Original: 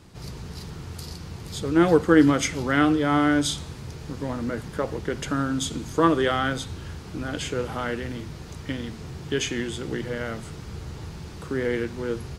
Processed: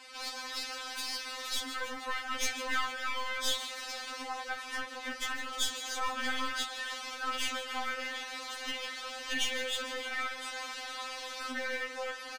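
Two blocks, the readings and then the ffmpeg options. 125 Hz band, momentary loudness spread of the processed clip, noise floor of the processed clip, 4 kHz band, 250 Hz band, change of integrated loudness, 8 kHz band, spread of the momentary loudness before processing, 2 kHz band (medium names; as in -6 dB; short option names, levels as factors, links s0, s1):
under -30 dB, 6 LU, -44 dBFS, 0.0 dB, -24.5 dB, -10.5 dB, -3.5 dB, 17 LU, -3.5 dB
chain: -filter_complex "[0:a]highpass=f=180:w=0.5412,highpass=f=180:w=1.3066,asplit=2[s0][s1];[s1]highpass=f=720:p=1,volume=5.01,asoftclip=type=tanh:threshold=0.562[s2];[s0][s2]amix=inputs=2:normalize=0,lowpass=f=3300:p=1,volume=0.501,highshelf=f=8600:g=-5.5,acompressor=threshold=0.0224:ratio=2.5,aeval=exprs='val(0)*sin(2*PI*150*n/s)':c=same,tiltshelf=f=690:g=-10,aeval=exprs='clip(val(0),-1,0.0251)':c=same,asplit=8[s3][s4][s5][s6][s7][s8][s9][s10];[s4]adelay=153,afreqshift=79,volume=0.266[s11];[s5]adelay=306,afreqshift=158,volume=0.164[s12];[s6]adelay=459,afreqshift=237,volume=0.102[s13];[s7]adelay=612,afreqshift=316,volume=0.0631[s14];[s8]adelay=765,afreqshift=395,volume=0.0394[s15];[s9]adelay=918,afreqshift=474,volume=0.0243[s16];[s10]adelay=1071,afreqshift=553,volume=0.0151[s17];[s3][s11][s12][s13][s14][s15][s16][s17]amix=inputs=8:normalize=0,afftfilt=real='re*3.46*eq(mod(b,12),0)':imag='im*3.46*eq(mod(b,12),0)':win_size=2048:overlap=0.75"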